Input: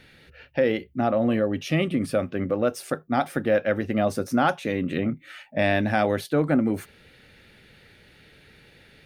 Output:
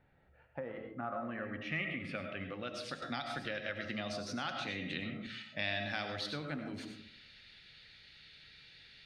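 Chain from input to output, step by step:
comb and all-pass reverb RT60 0.54 s, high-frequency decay 0.3×, pre-delay 55 ms, DRR 6 dB
low-pass filter sweep 790 Hz → 4,400 Hz, 0:00.30–0:03.05
hum removal 55.27 Hz, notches 14
downward compressor 3 to 1, threshold −22 dBFS, peak gain reduction 6 dB
guitar amp tone stack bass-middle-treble 5-5-5
tuned comb filter 140 Hz, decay 0.72 s, harmonics all, mix 50%
0:03.02–0:05.27: multiband upward and downward compressor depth 70%
level +7.5 dB

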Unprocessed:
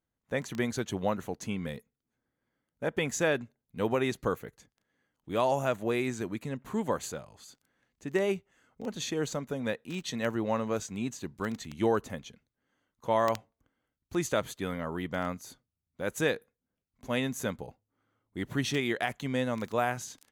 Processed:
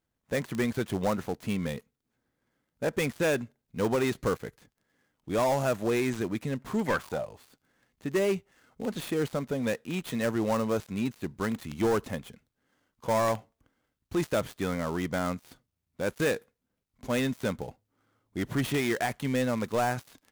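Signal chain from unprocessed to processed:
gap after every zero crossing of 0.089 ms
0:06.85–0:07.34: parametric band 2,200 Hz → 400 Hz +14 dB 0.44 octaves
soft clipping −25 dBFS, distortion −12 dB
level +5 dB

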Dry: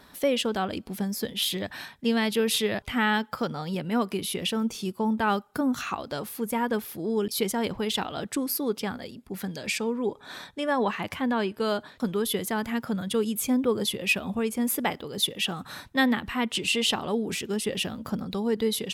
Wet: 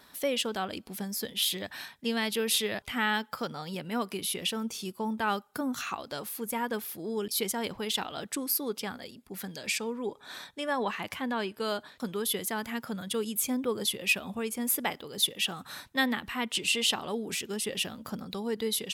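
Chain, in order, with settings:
spectral tilt +1.5 dB per octave
level −4 dB

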